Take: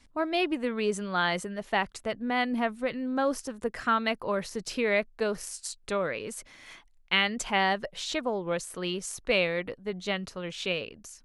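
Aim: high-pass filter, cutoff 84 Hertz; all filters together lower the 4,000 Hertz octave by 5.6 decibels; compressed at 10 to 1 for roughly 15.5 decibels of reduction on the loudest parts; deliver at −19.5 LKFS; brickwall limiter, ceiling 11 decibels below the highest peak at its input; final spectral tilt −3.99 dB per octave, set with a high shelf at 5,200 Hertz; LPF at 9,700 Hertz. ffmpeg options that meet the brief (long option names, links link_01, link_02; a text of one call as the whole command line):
ffmpeg -i in.wav -af "highpass=84,lowpass=9700,equalizer=frequency=4000:width_type=o:gain=-5,highshelf=frequency=5200:gain=-8.5,acompressor=threshold=-38dB:ratio=10,volume=25.5dB,alimiter=limit=-9.5dB:level=0:latency=1" out.wav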